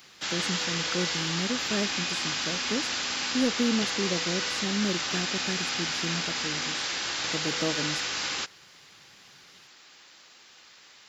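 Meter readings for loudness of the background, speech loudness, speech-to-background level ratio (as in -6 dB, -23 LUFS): -28.5 LUFS, -33.5 LUFS, -5.0 dB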